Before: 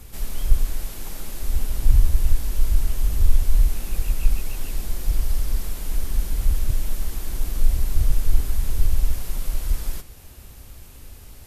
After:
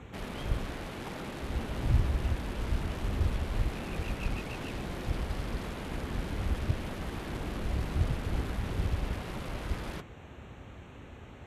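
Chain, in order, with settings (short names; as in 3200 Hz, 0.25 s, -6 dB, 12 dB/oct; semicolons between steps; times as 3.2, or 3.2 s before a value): Wiener smoothing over 9 samples; BPF 110–5100 Hz; gain +4 dB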